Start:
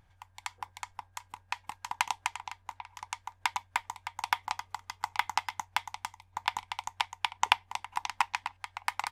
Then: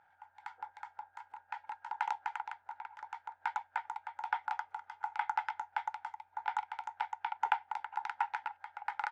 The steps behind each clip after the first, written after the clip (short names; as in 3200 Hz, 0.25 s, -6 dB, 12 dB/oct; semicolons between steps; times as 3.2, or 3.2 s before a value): transient shaper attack -12 dB, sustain +1 dB; double band-pass 1100 Hz, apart 0.72 oct; gain +11.5 dB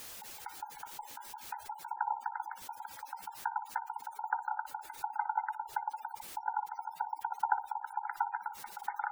requantised 8-bit, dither triangular; band-limited delay 60 ms, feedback 34%, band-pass 690 Hz, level -9.5 dB; spectral gate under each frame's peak -15 dB strong; gain +1 dB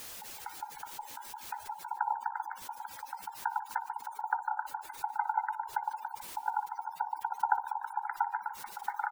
frequency-shifting echo 0.148 s, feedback 44%, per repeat +52 Hz, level -16 dB; gain +2 dB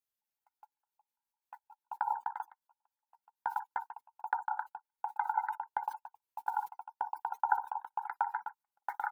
gate -35 dBFS, range -49 dB; bell 13000 Hz +9 dB 0.28 oct; gain -1 dB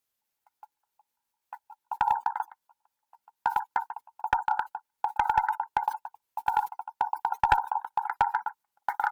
one-sided clip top -24 dBFS; gain +8.5 dB